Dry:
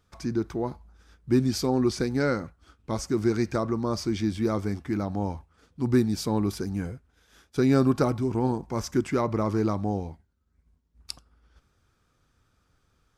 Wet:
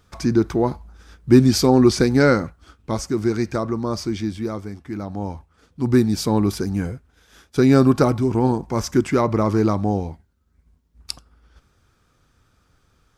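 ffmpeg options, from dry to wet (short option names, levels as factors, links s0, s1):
-af "volume=11.2,afade=t=out:st=2.32:d=0.82:silence=0.473151,afade=t=out:st=4.01:d=0.71:silence=0.421697,afade=t=in:st=4.72:d=1.53:silence=0.281838"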